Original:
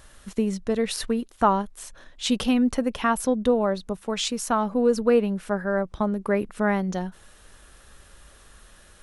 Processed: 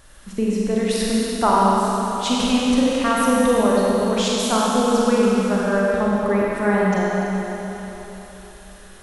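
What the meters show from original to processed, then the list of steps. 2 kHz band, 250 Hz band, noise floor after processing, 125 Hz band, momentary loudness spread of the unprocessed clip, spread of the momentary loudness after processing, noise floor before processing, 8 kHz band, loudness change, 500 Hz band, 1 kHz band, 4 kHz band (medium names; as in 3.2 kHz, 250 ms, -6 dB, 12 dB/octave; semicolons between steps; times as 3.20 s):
+6.5 dB, +6.0 dB, -42 dBFS, +7.0 dB, 9 LU, 11 LU, -53 dBFS, +6.5 dB, +5.5 dB, +5.0 dB, +7.0 dB, +6.5 dB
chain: Schroeder reverb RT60 3.8 s, combs from 32 ms, DRR -5.5 dB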